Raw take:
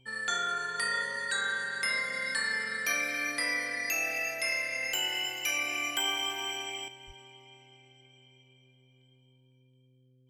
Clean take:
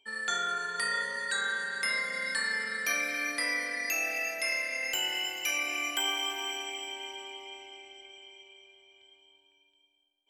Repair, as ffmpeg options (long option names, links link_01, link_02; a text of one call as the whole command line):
ffmpeg -i in.wav -filter_complex "[0:a]bandreject=frequency=128.3:width_type=h:width=4,bandreject=frequency=256.6:width_type=h:width=4,bandreject=frequency=384.9:width_type=h:width=4,bandreject=frequency=513.2:width_type=h:width=4,asplit=3[link_01][link_02][link_03];[link_01]afade=type=out:start_time=7.06:duration=0.02[link_04];[link_02]highpass=frequency=140:width=0.5412,highpass=frequency=140:width=1.3066,afade=type=in:start_time=7.06:duration=0.02,afade=type=out:start_time=7.18:duration=0.02[link_05];[link_03]afade=type=in:start_time=7.18:duration=0.02[link_06];[link_04][link_05][link_06]amix=inputs=3:normalize=0,asetnsamples=nb_out_samples=441:pad=0,asendcmd='6.88 volume volume 10dB',volume=0dB" out.wav